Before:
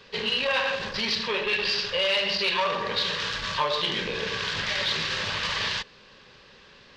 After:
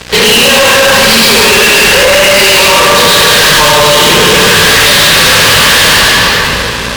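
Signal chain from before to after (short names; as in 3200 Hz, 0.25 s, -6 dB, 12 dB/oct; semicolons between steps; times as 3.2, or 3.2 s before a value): 1.67–2.33 resonant high shelf 3200 Hz -13 dB, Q 1.5; 3.14–3.8 comb 6.5 ms, depth 58%; reverb RT60 2.1 s, pre-delay 68 ms, DRR -7.5 dB; limiter -12.5 dBFS, peak gain reduction 6.5 dB; hum 60 Hz, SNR 30 dB; fuzz box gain 38 dB, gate -46 dBFS; gain +9 dB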